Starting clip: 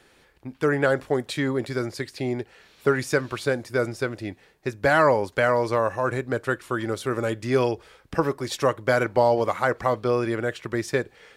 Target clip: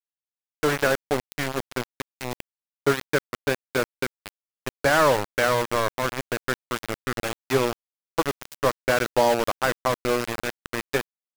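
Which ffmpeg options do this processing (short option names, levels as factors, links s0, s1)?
-filter_complex "[0:a]asettb=1/sr,asplit=3[s0][s1][s2];[s0]atrim=end=1.614[s3];[s1]atrim=start=1.61:end=4.18,asetpts=PTS-STARTPTS,afade=t=in:d=0.004:c=qsin,afade=t=out:st=2.566:d=0.004:c=qsin,highpass=f=89:w=0.5412,highpass=f=89:w=1.3066[s4];[s2]atrim=start=4.176[s5];[s3][s4]acrossfade=d=0.004:c1=hsin:c2=qsin[s6];[s6][s5]acrossfade=d=0.004:c1=qsin:c2=hsin,bandreject=f=60:t=h:w=6,bandreject=f=120:t=h:w=6,bandreject=f=180:t=h:w=6,aeval=exprs='val(0)*gte(abs(val(0)),0.0944)':c=same"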